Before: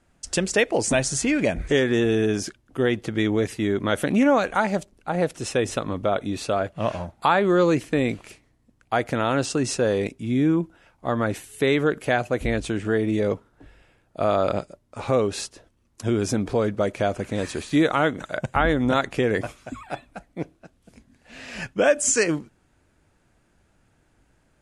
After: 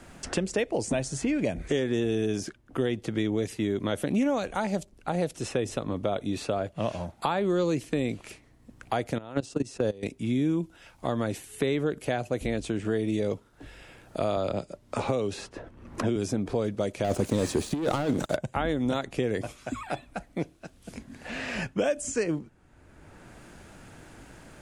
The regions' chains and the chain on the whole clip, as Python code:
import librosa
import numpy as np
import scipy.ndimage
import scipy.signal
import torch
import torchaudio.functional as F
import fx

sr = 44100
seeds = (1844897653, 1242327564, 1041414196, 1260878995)

y = fx.chain(x, sr, fx.level_steps(step_db=21),
    fx.tilt_shelf(db=3.5, hz=1400.0), at=(9.18, 10.03))
y = fx.chain(y, sr, fx.high_shelf(hz=7700.0, db=-7.5),
    fx.band_squash(depth_pct=70), at=(14.36, 16.16))
y = fx.chain(y, sr, fx.peak_eq(hz=2300.0, db=-6.0, octaves=1.2),
    fx.leveller(passes=3),
    fx.over_compress(threshold_db=-17.0, ratio=-0.5), at=(17.04, 18.36))
y = fx.dynamic_eq(y, sr, hz=1500.0, q=0.87, threshold_db=-38.0, ratio=4.0, max_db=-7)
y = fx.band_squash(y, sr, depth_pct=70)
y = F.gain(torch.from_numpy(y), -5.0).numpy()